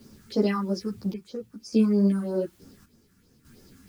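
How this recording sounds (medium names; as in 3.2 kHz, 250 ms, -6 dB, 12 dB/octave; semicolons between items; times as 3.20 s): phasing stages 4, 3.1 Hz, lowest notch 500–3200 Hz; a quantiser's noise floor 10-bit, dither triangular; chopped level 0.58 Hz, depth 65%, duty 65%; a shimmering, thickened sound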